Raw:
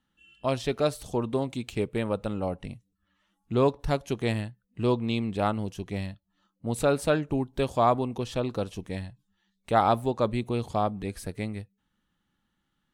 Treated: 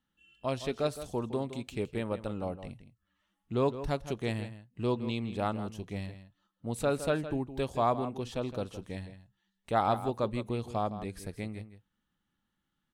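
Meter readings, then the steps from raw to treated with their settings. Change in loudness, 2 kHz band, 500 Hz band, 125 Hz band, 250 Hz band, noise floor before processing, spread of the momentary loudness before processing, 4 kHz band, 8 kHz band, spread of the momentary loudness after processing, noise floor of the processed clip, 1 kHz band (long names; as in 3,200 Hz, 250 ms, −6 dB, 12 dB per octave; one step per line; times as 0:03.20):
−5.5 dB, −5.5 dB, −5.0 dB, −5.5 dB, −5.5 dB, −78 dBFS, 12 LU, −5.5 dB, −5.5 dB, 13 LU, −82 dBFS, −5.0 dB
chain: slap from a distant wall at 28 metres, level −12 dB
level −5.5 dB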